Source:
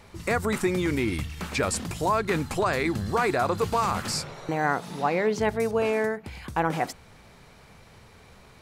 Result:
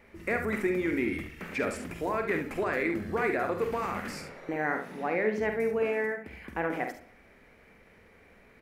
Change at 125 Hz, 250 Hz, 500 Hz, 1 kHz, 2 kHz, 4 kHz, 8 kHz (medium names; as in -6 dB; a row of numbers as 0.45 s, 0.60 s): -10.5 dB, -3.5 dB, -3.5 dB, -7.5 dB, -1.5 dB, -13.5 dB, -15.5 dB